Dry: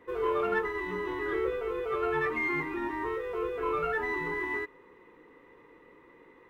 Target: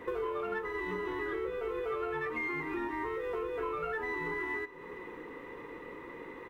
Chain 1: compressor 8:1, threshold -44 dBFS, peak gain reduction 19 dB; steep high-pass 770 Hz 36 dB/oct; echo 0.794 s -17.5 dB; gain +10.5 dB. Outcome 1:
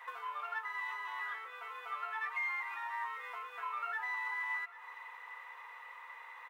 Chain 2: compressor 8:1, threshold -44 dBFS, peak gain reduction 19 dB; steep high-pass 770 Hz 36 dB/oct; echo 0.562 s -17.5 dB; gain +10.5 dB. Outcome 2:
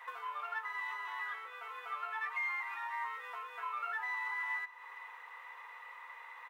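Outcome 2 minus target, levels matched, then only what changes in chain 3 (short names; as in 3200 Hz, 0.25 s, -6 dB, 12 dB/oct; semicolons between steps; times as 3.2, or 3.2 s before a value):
1000 Hz band +3.0 dB
remove: steep high-pass 770 Hz 36 dB/oct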